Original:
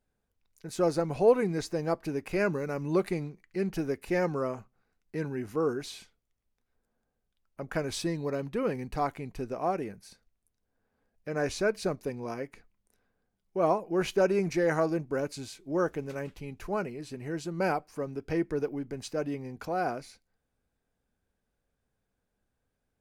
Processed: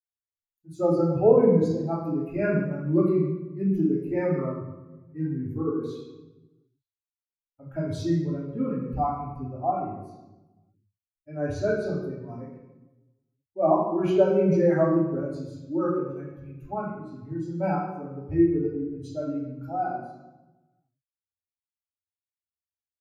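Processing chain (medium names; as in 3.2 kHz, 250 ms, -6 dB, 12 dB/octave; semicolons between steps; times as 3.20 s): expander on every frequency bin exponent 2; 9.89–11.30 s: treble shelf 3.4 kHz +9.5 dB; reverberation RT60 1.1 s, pre-delay 3 ms, DRR -4 dB; trim -3.5 dB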